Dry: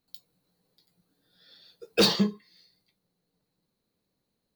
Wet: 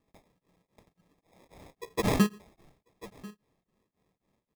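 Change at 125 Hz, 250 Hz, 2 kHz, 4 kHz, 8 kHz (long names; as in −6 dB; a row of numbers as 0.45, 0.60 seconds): +1.5, −0.5, −2.5, −14.5, −4.0 decibels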